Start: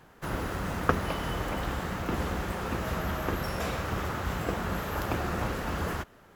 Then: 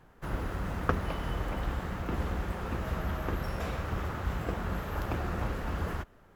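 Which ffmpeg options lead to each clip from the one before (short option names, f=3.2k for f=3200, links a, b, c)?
-filter_complex "[0:a]lowshelf=f=65:g=11.5,asplit=2[a][b];[b]adynamicsmooth=sensitivity=7:basefreq=3.2k,volume=-4dB[c];[a][c]amix=inputs=2:normalize=0,volume=-8.5dB"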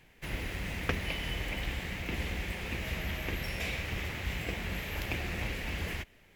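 -af "highshelf=f=1.7k:t=q:w=3:g=9,volume=-3.5dB"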